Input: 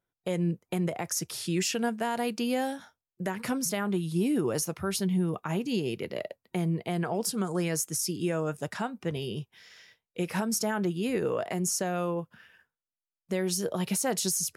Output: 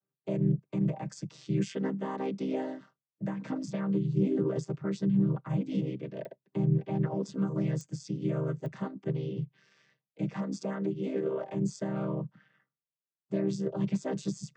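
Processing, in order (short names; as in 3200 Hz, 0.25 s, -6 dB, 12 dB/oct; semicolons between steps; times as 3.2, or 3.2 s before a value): chord vocoder minor triad, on C3; 10.34–11.49 HPF 220 Hz 12 dB/oct; pops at 6.25/7.81/8.66, -32 dBFS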